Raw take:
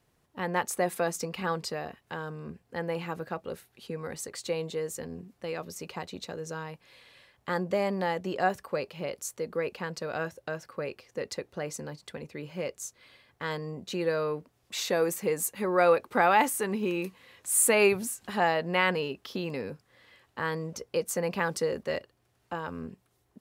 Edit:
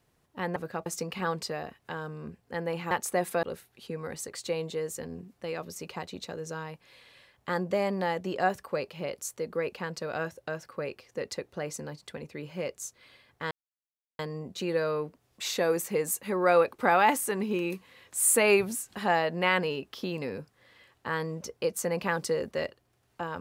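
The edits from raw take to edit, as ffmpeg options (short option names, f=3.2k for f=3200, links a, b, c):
-filter_complex "[0:a]asplit=6[a][b][c][d][e][f];[a]atrim=end=0.562[g];[b]atrim=start=3.128:end=3.432[h];[c]atrim=start=1.078:end=3.132[i];[d]atrim=start=0.558:end=1.082[j];[e]atrim=start=3.428:end=13.51,asetpts=PTS-STARTPTS,afade=t=out:st=10.078:d=0.004:c=hsin,apad=pad_dur=0.68[k];[f]atrim=start=13.51,asetpts=PTS-STARTPTS,afade=t=in:d=0.004:c=hsin[l];[g][h]acrossfade=d=0.004:c1=hsin:c2=hsin[m];[m][i]acrossfade=d=0.004:c1=hsin:c2=hsin[n];[n][j]acrossfade=d=0.004:c1=hsin:c2=hsin[o];[k][l]concat=n=2:v=0:a=1[p];[o][p]acrossfade=d=0.004:c1=hsin:c2=hsin"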